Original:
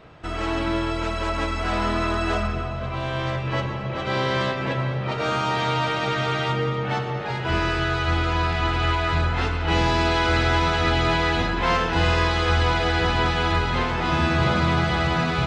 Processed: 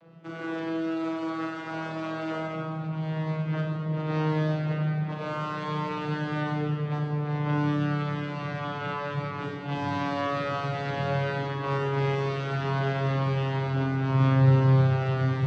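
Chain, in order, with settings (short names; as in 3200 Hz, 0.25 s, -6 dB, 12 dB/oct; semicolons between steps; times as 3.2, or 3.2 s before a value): vocoder on a gliding note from E3, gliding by -4 st; Schroeder reverb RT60 1.1 s, combs from 30 ms, DRR 1 dB; gain -5 dB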